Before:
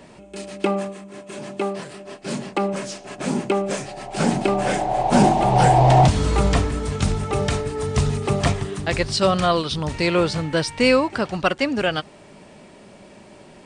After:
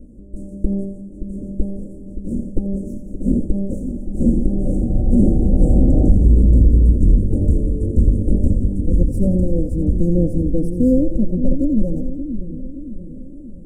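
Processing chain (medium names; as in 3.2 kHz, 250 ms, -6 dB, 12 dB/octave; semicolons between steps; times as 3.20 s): comb filter that takes the minimum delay 3.7 ms; inverse Chebyshev band-stop 970–4100 Hz, stop band 50 dB; RIAA curve playback; peak limiter -5 dBFS, peak gain reduction 7.5 dB; on a send: two-band feedback delay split 440 Hz, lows 572 ms, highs 85 ms, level -8.5 dB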